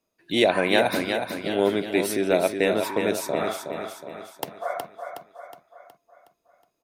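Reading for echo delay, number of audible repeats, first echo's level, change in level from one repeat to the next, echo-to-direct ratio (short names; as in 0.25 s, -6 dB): 0.367 s, 5, -6.5 dB, -6.0 dB, -5.5 dB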